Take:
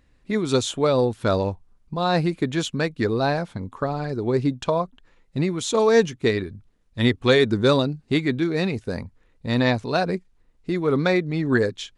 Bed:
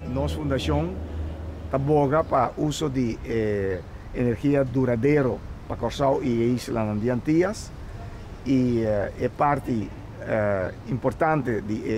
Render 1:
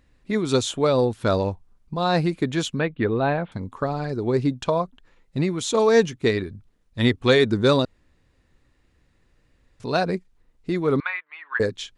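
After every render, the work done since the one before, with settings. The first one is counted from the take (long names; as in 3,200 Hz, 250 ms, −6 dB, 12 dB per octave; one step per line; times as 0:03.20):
0:02.79–0:03.52: Butterworth low-pass 3,500 Hz 48 dB per octave
0:07.85–0:09.80: fill with room tone
0:11.00–0:11.60: Chebyshev band-pass filter 1,000–2,900 Hz, order 3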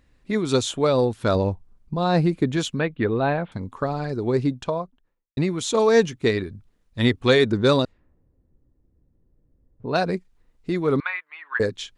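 0:01.35–0:02.57: tilt shelving filter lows +3.5 dB, about 650 Hz
0:04.34–0:05.37: fade out and dull
0:07.52–0:09.96: low-pass that shuts in the quiet parts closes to 410 Hz, open at −16.5 dBFS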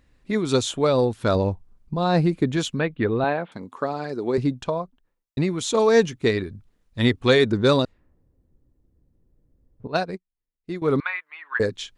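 0:03.24–0:04.38: high-pass filter 230 Hz
0:09.87–0:10.82: expander for the loud parts 2.5 to 1, over −37 dBFS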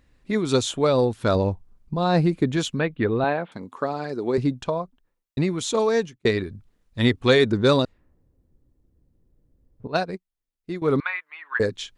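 0:05.46–0:06.25: fade out equal-power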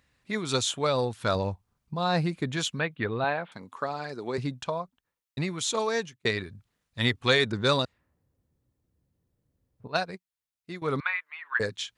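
high-pass filter 110 Hz 12 dB per octave
parametric band 310 Hz −10.5 dB 2.1 octaves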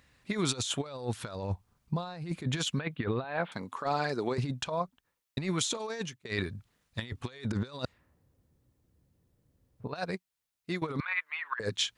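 compressor whose output falls as the input rises −32 dBFS, ratio −0.5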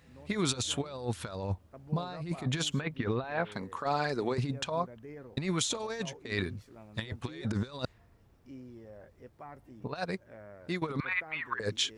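mix in bed −26.5 dB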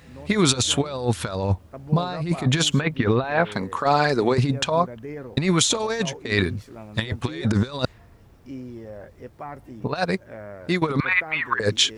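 level +11.5 dB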